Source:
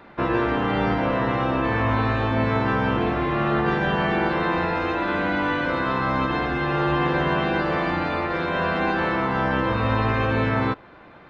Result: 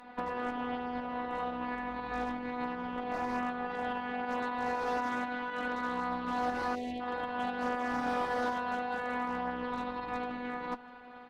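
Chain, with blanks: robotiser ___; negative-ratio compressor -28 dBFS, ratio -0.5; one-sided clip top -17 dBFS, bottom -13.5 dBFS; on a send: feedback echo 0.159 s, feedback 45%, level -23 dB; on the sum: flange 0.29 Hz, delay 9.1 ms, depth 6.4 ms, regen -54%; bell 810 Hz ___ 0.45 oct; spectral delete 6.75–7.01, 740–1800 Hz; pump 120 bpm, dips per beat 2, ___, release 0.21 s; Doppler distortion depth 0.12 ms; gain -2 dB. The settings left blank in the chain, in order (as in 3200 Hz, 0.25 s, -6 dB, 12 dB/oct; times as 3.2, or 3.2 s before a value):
246 Hz, +7.5 dB, -3 dB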